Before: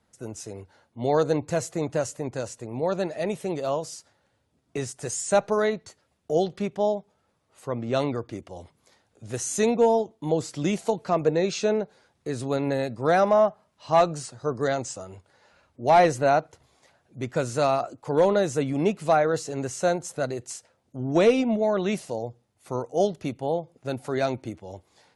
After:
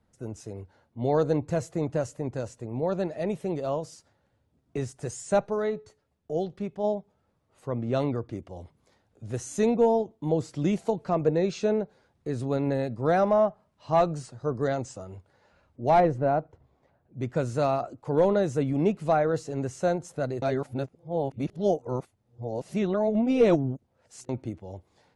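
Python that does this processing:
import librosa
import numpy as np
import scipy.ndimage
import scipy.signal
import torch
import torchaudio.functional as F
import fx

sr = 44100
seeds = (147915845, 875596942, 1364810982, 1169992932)

y = fx.comb_fb(x, sr, f0_hz=430.0, decay_s=0.34, harmonics='all', damping=0.0, mix_pct=40, at=(5.44, 6.83), fade=0.02)
y = fx.lowpass(y, sr, hz=1000.0, slope=6, at=(16.0, 17.2))
y = fx.edit(y, sr, fx.reverse_span(start_s=20.42, length_s=3.87), tone=tone)
y = fx.tilt_eq(y, sr, slope=-2.0)
y = F.gain(torch.from_numpy(y), -4.0).numpy()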